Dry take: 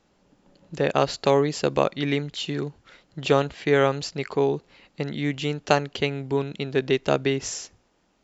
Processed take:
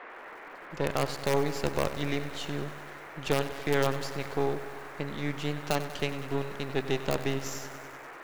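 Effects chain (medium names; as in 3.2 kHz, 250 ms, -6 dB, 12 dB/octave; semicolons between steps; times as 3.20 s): partial rectifier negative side -12 dB; band noise 310–2000 Hz -41 dBFS; in parallel at -5.5 dB: integer overflow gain 8 dB; on the sum: bit-crushed delay 96 ms, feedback 80%, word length 6-bit, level -13 dB; trim -8.5 dB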